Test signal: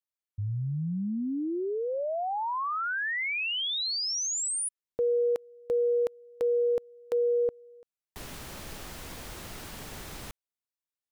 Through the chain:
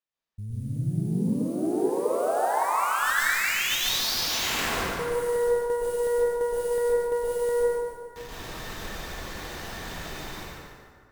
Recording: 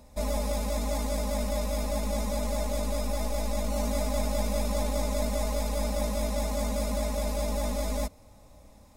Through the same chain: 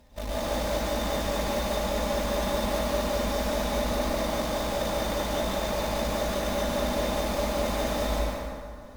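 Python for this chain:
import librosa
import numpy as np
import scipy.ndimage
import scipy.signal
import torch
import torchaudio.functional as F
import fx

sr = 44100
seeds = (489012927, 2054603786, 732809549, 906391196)

p1 = fx.small_body(x, sr, hz=(1800.0, 3600.0), ring_ms=45, db=13)
p2 = fx.sample_hold(p1, sr, seeds[0], rate_hz=9800.0, jitter_pct=20)
p3 = fx.tube_stage(p2, sr, drive_db=28.0, bias=0.7)
p4 = p3 + fx.echo_thinned(p3, sr, ms=145, feedback_pct=41, hz=420.0, wet_db=-5.5, dry=0)
y = fx.rev_plate(p4, sr, seeds[1], rt60_s=2.0, hf_ratio=0.45, predelay_ms=105, drr_db=-7.0)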